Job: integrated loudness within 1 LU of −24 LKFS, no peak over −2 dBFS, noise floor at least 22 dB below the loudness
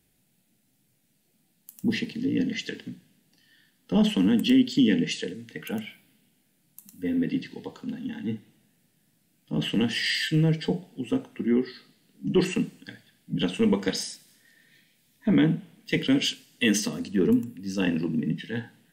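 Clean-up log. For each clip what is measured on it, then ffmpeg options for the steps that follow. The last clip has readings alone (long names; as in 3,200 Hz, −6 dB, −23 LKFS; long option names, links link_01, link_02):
integrated loudness −26.5 LKFS; sample peak −11.5 dBFS; target loudness −24.0 LKFS
→ -af "volume=2.5dB"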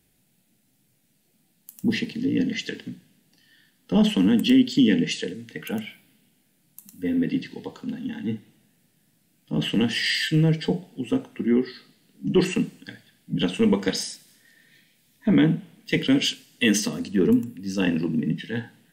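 integrated loudness −24.0 LKFS; sample peak −9.0 dBFS; background noise floor −66 dBFS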